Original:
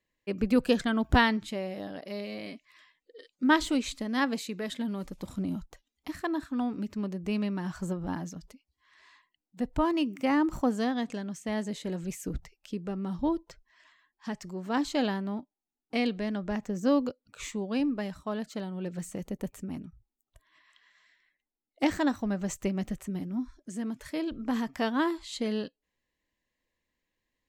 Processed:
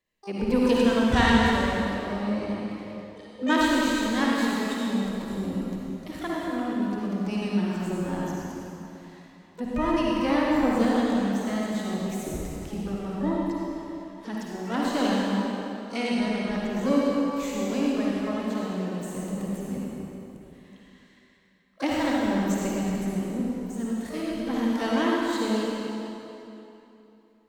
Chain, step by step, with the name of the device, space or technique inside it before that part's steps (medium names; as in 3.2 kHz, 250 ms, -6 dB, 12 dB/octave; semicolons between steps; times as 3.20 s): 1.99–2.51 s: tilt EQ -4 dB/octave; shimmer-style reverb (harmony voices +12 st -11 dB; reverberation RT60 3.1 s, pre-delay 47 ms, DRR -5 dB); trim -2 dB